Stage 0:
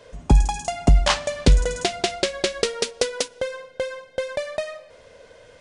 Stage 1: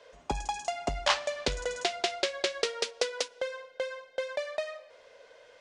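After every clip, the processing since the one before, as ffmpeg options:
ffmpeg -i in.wav -filter_complex "[0:a]acrossover=split=390 7100:gain=0.126 1 0.2[link_01][link_02][link_03];[link_01][link_02][link_03]amix=inputs=3:normalize=0,volume=-5dB" out.wav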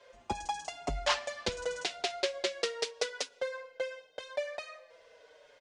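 ffmpeg -i in.wav -filter_complex "[0:a]asplit=2[link_01][link_02];[link_02]adelay=5.2,afreqshift=-0.87[link_03];[link_01][link_03]amix=inputs=2:normalize=1" out.wav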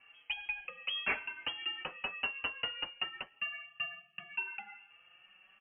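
ffmpeg -i in.wav -af "lowpass=frequency=2800:width_type=q:width=0.5098,lowpass=frequency=2800:width_type=q:width=0.6013,lowpass=frequency=2800:width_type=q:width=0.9,lowpass=frequency=2800:width_type=q:width=2.563,afreqshift=-3300,volume=-3dB" out.wav

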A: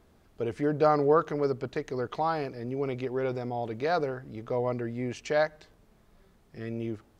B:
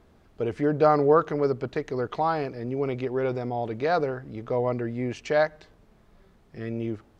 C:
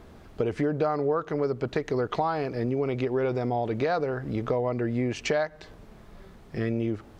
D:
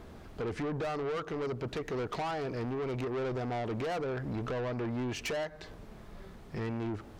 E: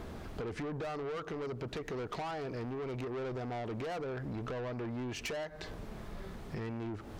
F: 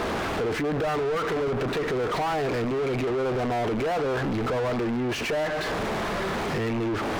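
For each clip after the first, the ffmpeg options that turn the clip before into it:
ffmpeg -i in.wav -af "highshelf=frequency=6400:gain=-9,volume=3.5dB" out.wav
ffmpeg -i in.wav -af "acompressor=threshold=-33dB:ratio=6,volume=9dB" out.wav
ffmpeg -i in.wav -af "asoftclip=type=tanh:threshold=-31.5dB" out.wav
ffmpeg -i in.wav -af "acompressor=threshold=-43dB:ratio=6,volume=5dB" out.wav
ffmpeg -i in.wav -filter_complex "[0:a]asplit=2[link_01][link_02];[link_02]highpass=frequency=720:poles=1,volume=38dB,asoftclip=type=tanh:threshold=-28.5dB[link_03];[link_01][link_03]amix=inputs=2:normalize=0,lowpass=frequency=2000:poles=1,volume=-6dB,volume=8dB" out.wav

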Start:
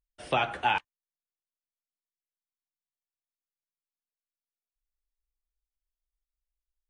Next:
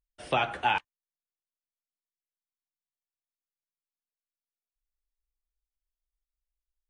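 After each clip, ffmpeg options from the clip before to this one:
ffmpeg -i in.wav -af anull out.wav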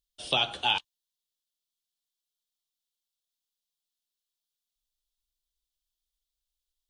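ffmpeg -i in.wav -af "highshelf=frequency=2600:width_type=q:width=3:gain=9.5,volume=-3dB" out.wav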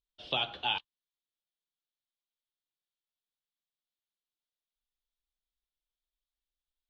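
ffmpeg -i in.wav -af "lowpass=frequency=4100:width=0.5412,lowpass=frequency=4100:width=1.3066,volume=-5dB" out.wav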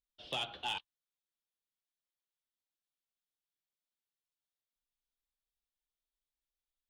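ffmpeg -i in.wav -af "asoftclip=type=tanh:threshold=-24.5dB,volume=-4dB" out.wav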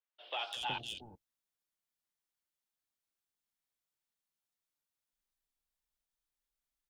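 ffmpeg -i in.wav -filter_complex "[0:a]acrossover=split=470|3300[link_01][link_02][link_03];[link_03]adelay=200[link_04];[link_01]adelay=370[link_05];[link_05][link_02][link_04]amix=inputs=3:normalize=0,volume=2.5dB" out.wav

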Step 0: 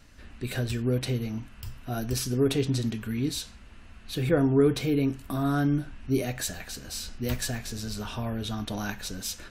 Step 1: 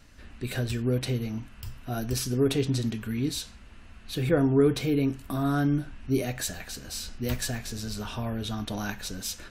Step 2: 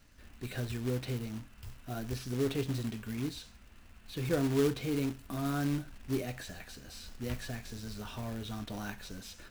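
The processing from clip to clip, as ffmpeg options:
ffmpeg -i in.wav -af anull out.wav
ffmpeg -i in.wav -filter_complex "[0:a]acrossover=split=3900[link_01][link_02];[link_02]acompressor=threshold=-43dB:ratio=4:attack=1:release=60[link_03];[link_01][link_03]amix=inputs=2:normalize=0,acrusher=bits=3:mode=log:mix=0:aa=0.000001,volume=-7.5dB" out.wav

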